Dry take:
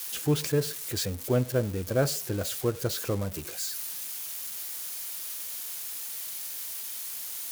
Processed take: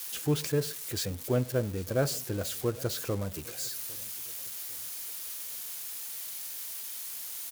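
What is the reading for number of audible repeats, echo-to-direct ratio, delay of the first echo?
2, -22.5 dB, 805 ms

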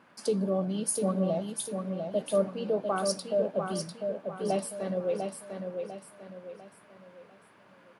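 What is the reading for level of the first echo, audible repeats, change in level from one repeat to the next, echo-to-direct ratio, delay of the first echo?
-5.5 dB, 4, -8.0 dB, -5.0 dB, 698 ms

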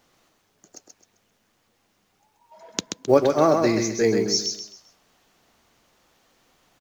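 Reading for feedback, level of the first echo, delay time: 32%, -5.0 dB, 131 ms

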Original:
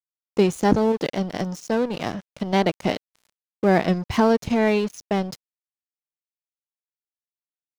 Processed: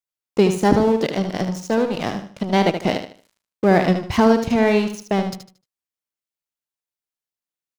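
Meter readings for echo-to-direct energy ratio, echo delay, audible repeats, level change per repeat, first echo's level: -7.5 dB, 76 ms, 3, -10.5 dB, -8.0 dB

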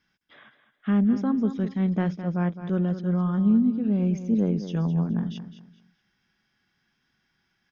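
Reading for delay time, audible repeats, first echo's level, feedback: 211 ms, 3, -11.5 dB, 28%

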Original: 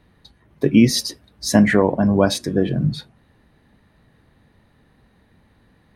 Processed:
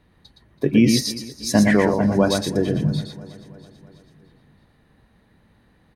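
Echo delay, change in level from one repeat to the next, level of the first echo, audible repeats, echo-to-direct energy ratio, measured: 116 ms, no regular repeats, -4.5 dB, 8, -4.0 dB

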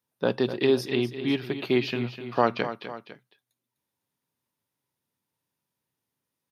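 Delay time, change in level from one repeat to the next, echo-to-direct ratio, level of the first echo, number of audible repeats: 251 ms, -5.5 dB, -10.5 dB, -11.5 dB, 2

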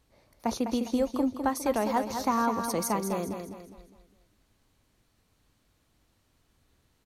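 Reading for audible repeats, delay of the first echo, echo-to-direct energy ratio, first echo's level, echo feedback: 4, 204 ms, -6.0 dB, -7.0 dB, 40%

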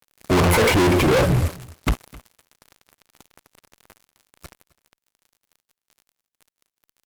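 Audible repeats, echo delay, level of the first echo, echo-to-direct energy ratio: 1, 261 ms, -22.0 dB, -22.0 dB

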